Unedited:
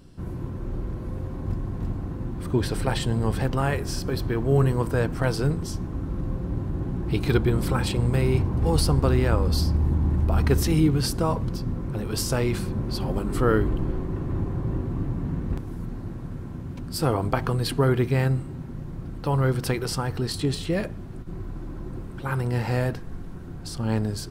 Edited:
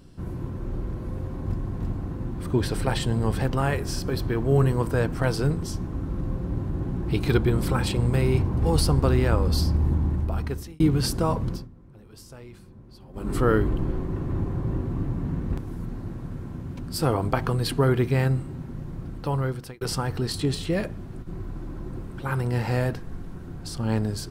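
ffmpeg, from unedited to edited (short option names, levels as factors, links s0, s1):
-filter_complex "[0:a]asplit=5[s0][s1][s2][s3][s4];[s0]atrim=end=10.8,asetpts=PTS-STARTPTS,afade=t=out:st=9.93:d=0.87[s5];[s1]atrim=start=10.8:end=11.68,asetpts=PTS-STARTPTS,afade=t=in:d=0.004:c=hsin,afade=t=out:st=0.71:d=0.17:silence=0.1[s6];[s2]atrim=start=11.68:end=13.13,asetpts=PTS-STARTPTS,volume=0.1[s7];[s3]atrim=start=13.13:end=19.81,asetpts=PTS-STARTPTS,afade=t=in:d=0.17:silence=0.1,afade=t=out:st=5.79:d=0.89:c=qsin[s8];[s4]atrim=start=19.81,asetpts=PTS-STARTPTS,afade=t=in:d=0.004:c=hsin[s9];[s5][s6][s7][s8][s9]concat=n=5:v=0:a=1"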